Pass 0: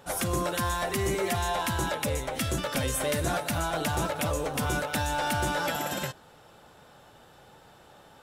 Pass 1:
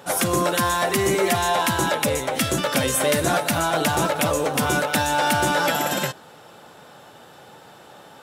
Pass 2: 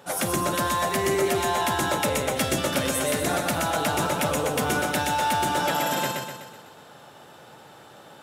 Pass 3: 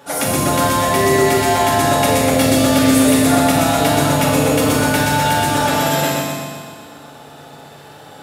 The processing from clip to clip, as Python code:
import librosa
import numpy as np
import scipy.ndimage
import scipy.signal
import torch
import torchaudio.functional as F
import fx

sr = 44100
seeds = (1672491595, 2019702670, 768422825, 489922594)

y1 = scipy.signal.sosfilt(scipy.signal.butter(2, 140.0, 'highpass', fs=sr, output='sos'), x)
y1 = F.gain(torch.from_numpy(y1), 8.5).numpy()
y2 = fx.rider(y1, sr, range_db=10, speed_s=0.5)
y2 = fx.echo_feedback(y2, sr, ms=125, feedback_pct=51, wet_db=-3.5)
y2 = F.gain(torch.from_numpy(y2), -5.5).numpy()
y3 = fx.rev_fdn(y2, sr, rt60_s=1.6, lf_ratio=1.2, hf_ratio=1.0, size_ms=21.0, drr_db=-4.0)
y3 = F.gain(torch.from_numpy(y3), 3.5).numpy()